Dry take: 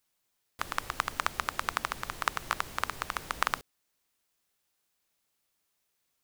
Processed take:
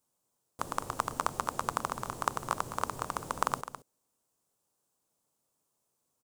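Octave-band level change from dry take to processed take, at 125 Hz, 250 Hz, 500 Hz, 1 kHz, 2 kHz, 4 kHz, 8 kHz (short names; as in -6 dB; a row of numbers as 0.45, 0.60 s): +4.0, +4.5, +4.5, +1.0, -7.5, -7.5, +0.5 dB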